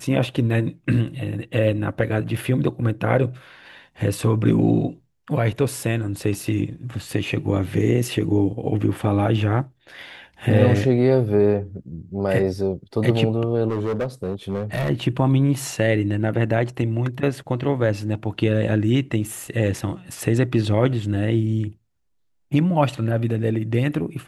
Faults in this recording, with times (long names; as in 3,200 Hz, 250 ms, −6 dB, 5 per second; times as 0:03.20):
0:13.69–0:14.90: clipping −19.5 dBFS